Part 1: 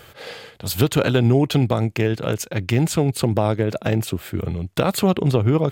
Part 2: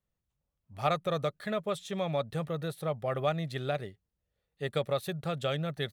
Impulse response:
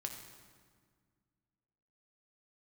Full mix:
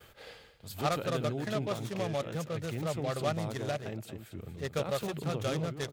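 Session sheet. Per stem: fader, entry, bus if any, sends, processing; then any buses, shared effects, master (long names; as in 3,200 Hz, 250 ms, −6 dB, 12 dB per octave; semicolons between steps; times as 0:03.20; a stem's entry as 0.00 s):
−9.5 dB, 0.00 s, no send, echo send −18.5 dB, automatic ducking −10 dB, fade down 0.60 s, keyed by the second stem
−2.5 dB, 0.00 s, no send, no echo send, upward compression, threshold −46 dBFS; short delay modulated by noise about 2,600 Hz, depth 0.042 ms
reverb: not used
echo: repeating echo 232 ms, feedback 25%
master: downward expander −55 dBFS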